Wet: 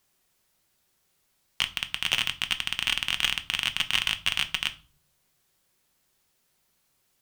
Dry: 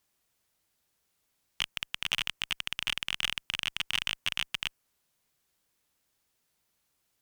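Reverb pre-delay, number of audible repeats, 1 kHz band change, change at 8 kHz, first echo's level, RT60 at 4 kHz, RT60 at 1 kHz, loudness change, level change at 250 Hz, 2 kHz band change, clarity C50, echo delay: 5 ms, no echo audible, +5.5 dB, +5.5 dB, no echo audible, 0.30 s, 0.40 s, +5.5 dB, +6.0 dB, +5.5 dB, 17.5 dB, no echo audible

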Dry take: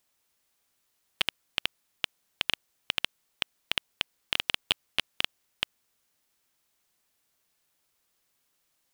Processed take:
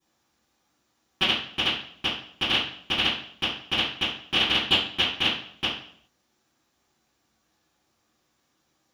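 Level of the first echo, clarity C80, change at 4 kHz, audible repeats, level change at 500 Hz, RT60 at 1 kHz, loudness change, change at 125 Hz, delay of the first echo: no echo audible, 7.5 dB, +8.0 dB, no echo audible, +10.5 dB, 0.55 s, +7.5 dB, +13.0 dB, no echo audible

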